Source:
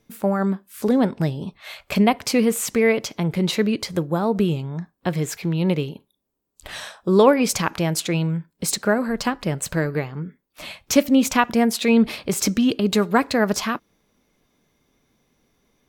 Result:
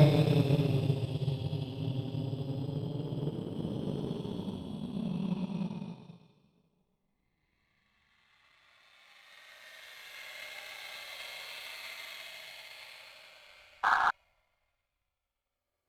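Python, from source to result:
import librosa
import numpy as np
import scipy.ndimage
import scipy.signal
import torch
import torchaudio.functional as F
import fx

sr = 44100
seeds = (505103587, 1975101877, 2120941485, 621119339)

y = fx.paulstretch(x, sr, seeds[0], factor=26.0, window_s=0.05, from_s=1.27)
y = fx.spec_paint(y, sr, seeds[1], shape='noise', start_s=13.83, length_s=0.28, low_hz=710.0, high_hz=1700.0, level_db=-23.0)
y = fx.power_curve(y, sr, exponent=1.4)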